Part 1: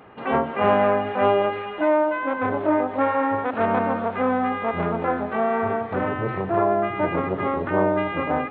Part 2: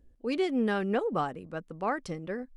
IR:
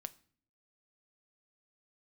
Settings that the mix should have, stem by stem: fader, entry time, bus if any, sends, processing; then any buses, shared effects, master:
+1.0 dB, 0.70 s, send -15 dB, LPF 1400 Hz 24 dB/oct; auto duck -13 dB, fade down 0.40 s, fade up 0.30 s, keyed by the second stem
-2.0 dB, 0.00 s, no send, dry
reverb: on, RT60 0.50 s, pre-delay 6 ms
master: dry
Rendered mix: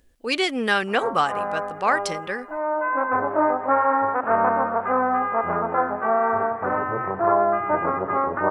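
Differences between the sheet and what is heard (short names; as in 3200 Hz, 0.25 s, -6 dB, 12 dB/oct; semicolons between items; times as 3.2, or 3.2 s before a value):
stem 2 -2.0 dB -> +7.5 dB; master: extra tilt shelf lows -9.5 dB, about 690 Hz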